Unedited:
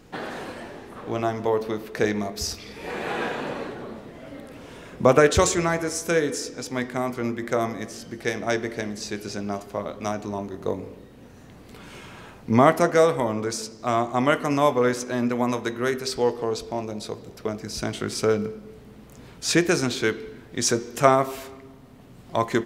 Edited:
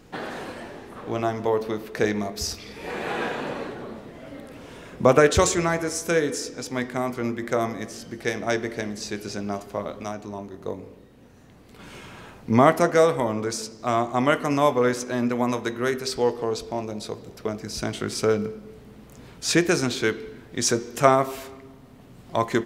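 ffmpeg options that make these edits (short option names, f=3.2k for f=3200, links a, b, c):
-filter_complex "[0:a]asplit=3[a][b][c];[a]atrim=end=10.032[d];[b]atrim=start=10.028:end=11.792,asetpts=PTS-STARTPTS,volume=-4.5dB[e];[c]atrim=start=11.788[f];[d][e]acrossfade=d=0.004:c1=hsin:c2=hsin[g];[g][f]acrossfade=d=0.004:c1=hsin:c2=hsin"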